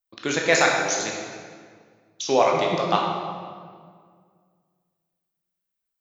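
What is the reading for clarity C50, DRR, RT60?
2.0 dB, -1.0 dB, 1.9 s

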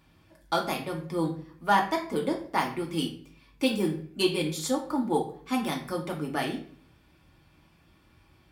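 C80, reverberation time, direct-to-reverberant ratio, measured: 12.5 dB, 0.55 s, -1.0 dB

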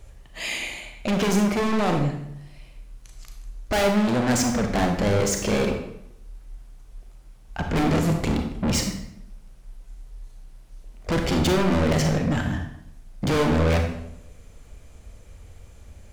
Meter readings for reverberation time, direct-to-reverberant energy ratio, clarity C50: 0.75 s, 3.5 dB, 5.5 dB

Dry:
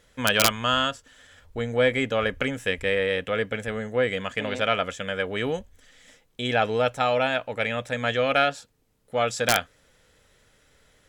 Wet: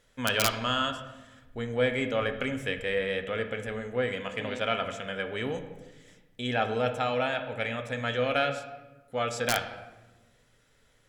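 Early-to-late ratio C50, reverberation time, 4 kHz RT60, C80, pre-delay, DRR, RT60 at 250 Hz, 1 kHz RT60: 9.5 dB, 1.1 s, 0.75 s, 11.5 dB, 3 ms, 6.0 dB, 1.6 s, 1.0 s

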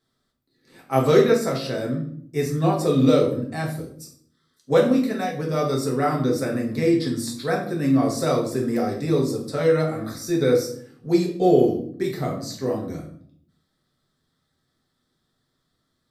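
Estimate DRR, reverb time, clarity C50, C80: -1.0 dB, 0.60 s, 7.0 dB, 11.0 dB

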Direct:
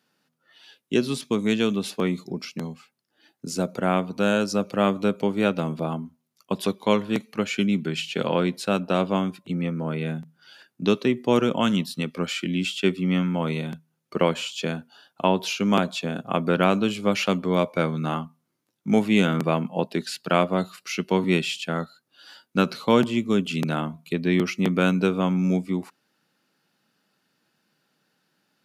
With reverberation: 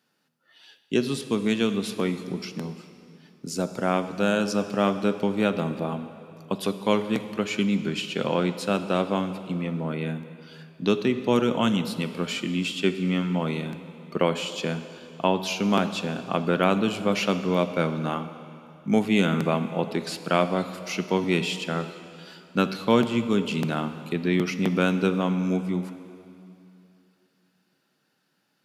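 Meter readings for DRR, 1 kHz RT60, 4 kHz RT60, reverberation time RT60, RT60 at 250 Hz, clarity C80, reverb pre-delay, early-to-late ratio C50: 10.0 dB, 2.8 s, 2.6 s, 2.8 s, 2.8 s, 11.5 dB, 4 ms, 11.0 dB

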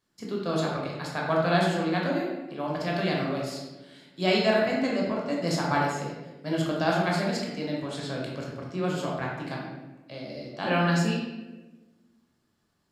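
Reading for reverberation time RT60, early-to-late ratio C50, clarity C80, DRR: 1.2 s, 1.0 dB, 4.0 dB, -3.0 dB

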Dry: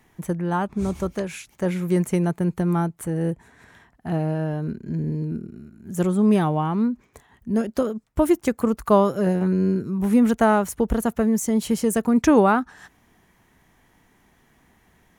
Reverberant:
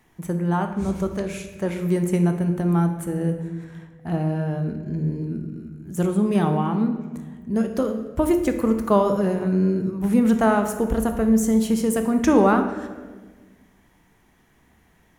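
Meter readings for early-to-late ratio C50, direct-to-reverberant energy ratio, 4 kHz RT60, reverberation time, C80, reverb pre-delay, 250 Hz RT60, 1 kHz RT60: 8.0 dB, 6.0 dB, 0.95 s, 1.4 s, 10.0 dB, 16 ms, 2.1 s, 1.2 s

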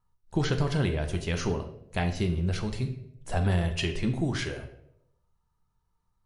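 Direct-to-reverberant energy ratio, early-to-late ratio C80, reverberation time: 5.5 dB, 12.5 dB, 0.75 s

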